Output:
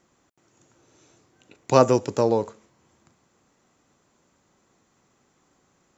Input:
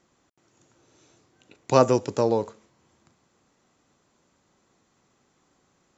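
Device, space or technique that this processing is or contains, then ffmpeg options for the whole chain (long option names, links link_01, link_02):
exciter from parts: -filter_complex "[0:a]asplit=2[link_01][link_02];[link_02]highpass=2800,asoftclip=type=tanh:threshold=-39dB,highpass=4200,volume=-8.5dB[link_03];[link_01][link_03]amix=inputs=2:normalize=0,volume=1.5dB"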